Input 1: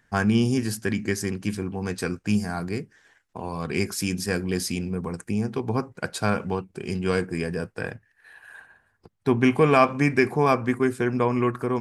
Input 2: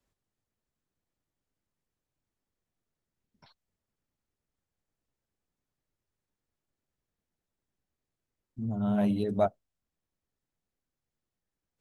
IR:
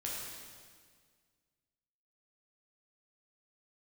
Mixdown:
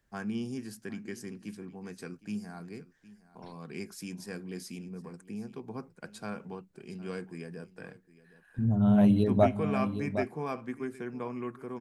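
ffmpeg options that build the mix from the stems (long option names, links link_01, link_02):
-filter_complex "[0:a]highpass=frequency=150:width=0.5412,highpass=frequency=150:width=1.3066,volume=-16dB,asplit=2[link_01][link_02];[link_02]volume=-18.5dB[link_03];[1:a]volume=1dB,asplit=3[link_04][link_05][link_06];[link_05]volume=-23.5dB[link_07];[link_06]volume=-9.5dB[link_08];[2:a]atrim=start_sample=2205[link_09];[link_07][link_09]afir=irnorm=-1:irlink=0[link_10];[link_03][link_08]amix=inputs=2:normalize=0,aecho=0:1:762:1[link_11];[link_01][link_04][link_10][link_11]amix=inputs=4:normalize=0,lowshelf=frequency=190:gain=8"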